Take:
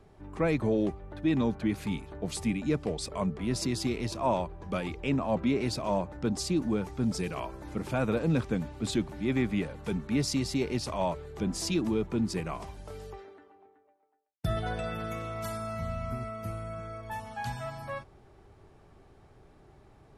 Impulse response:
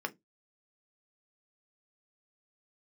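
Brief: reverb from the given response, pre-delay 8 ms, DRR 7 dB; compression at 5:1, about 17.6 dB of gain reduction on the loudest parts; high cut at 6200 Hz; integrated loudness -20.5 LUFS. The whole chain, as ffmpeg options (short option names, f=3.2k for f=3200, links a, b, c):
-filter_complex "[0:a]lowpass=6.2k,acompressor=threshold=-44dB:ratio=5,asplit=2[a][b];[1:a]atrim=start_sample=2205,adelay=8[c];[b][c]afir=irnorm=-1:irlink=0,volume=-10.5dB[d];[a][d]amix=inputs=2:normalize=0,volume=26dB"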